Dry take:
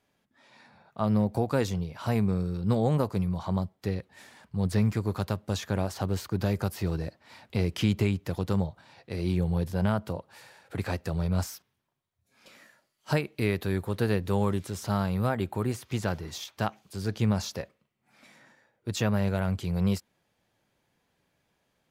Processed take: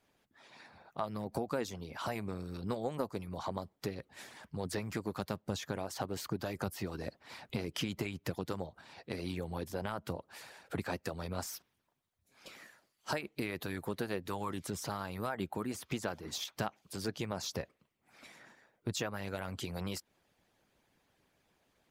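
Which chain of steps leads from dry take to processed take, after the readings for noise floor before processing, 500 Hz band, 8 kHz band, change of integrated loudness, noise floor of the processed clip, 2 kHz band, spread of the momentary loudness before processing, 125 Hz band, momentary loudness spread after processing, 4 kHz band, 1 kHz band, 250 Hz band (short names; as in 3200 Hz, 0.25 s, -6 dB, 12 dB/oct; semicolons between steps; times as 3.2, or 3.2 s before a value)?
-76 dBFS, -7.5 dB, -2.5 dB, -10.0 dB, -79 dBFS, -5.0 dB, 9 LU, -14.5 dB, 13 LU, -3.0 dB, -5.5 dB, -11.0 dB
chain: harmonic-percussive split harmonic -16 dB; compressor 2.5:1, threshold -42 dBFS, peak gain reduction 12.5 dB; gain +5 dB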